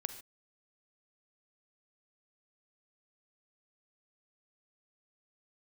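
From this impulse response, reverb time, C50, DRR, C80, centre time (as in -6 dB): no single decay rate, 10.5 dB, 9.5 dB, 13.0 dB, 9 ms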